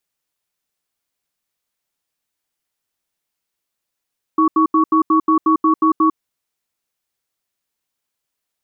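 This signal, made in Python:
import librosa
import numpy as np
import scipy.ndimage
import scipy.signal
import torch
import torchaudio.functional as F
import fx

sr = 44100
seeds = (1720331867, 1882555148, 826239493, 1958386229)

y = fx.cadence(sr, length_s=1.77, low_hz=318.0, high_hz=1120.0, on_s=0.1, off_s=0.08, level_db=-13.0)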